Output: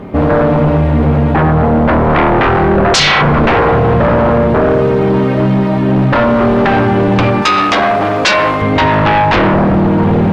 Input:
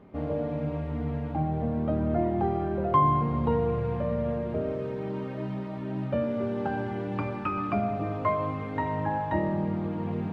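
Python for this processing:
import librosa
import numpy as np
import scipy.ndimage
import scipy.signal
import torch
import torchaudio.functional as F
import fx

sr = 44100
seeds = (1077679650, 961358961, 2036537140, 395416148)

y = fx.fold_sine(x, sr, drive_db=15, ceiling_db=-12.0)
y = fx.bass_treble(y, sr, bass_db=-11, treble_db=6, at=(7.42, 8.62))
y = y * 10.0 ** (5.5 / 20.0)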